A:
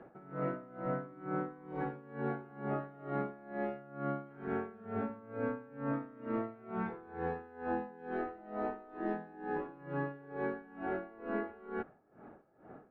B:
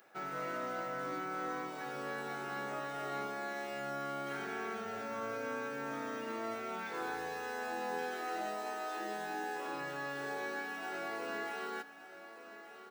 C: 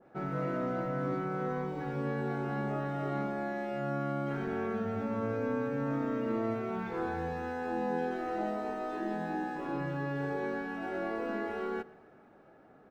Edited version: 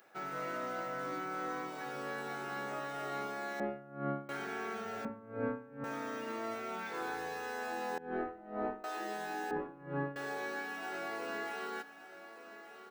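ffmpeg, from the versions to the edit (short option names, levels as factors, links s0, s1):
-filter_complex "[0:a]asplit=4[s0][s1][s2][s3];[1:a]asplit=5[s4][s5][s6][s7][s8];[s4]atrim=end=3.602[s9];[s0]atrim=start=3.598:end=4.292[s10];[s5]atrim=start=4.288:end=5.052[s11];[s1]atrim=start=5.048:end=5.842[s12];[s6]atrim=start=5.838:end=7.982[s13];[s2]atrim=start=7.978:end=8.842[s14];[s7]atrim=start=8.838:end=9.512[s15];[s3]atrim=start=9.508:end=10.162[s16];[s8]atrim=start=10.158[s17];[s9][s10]acrossfade=d=0.004:c1=hsin:c2=hsin[s18];[s18][s11]acrossfade=d=0.004:c1=hsin:c2=hsin[s19];[s19][s12]acrossfade=d=0.004:c1=hsin:c2=hsin[s20];[s20][s13]acrossfade=d=0.004:c1=hsin:c2=hsin[s21];[s21][s14]acrossfade=d=0.004:c1=hsin:c2=hsin[s22];[s22][s15]acrossfade=d=0.004:c1=hsin:c2=hsin[s23];[s23][s16]acrossfade=d=0.004:c1=hsin:c2=hsin[s24];[s24][s17]acrossfade=d=0.004:c1=hsin:c2=hsin"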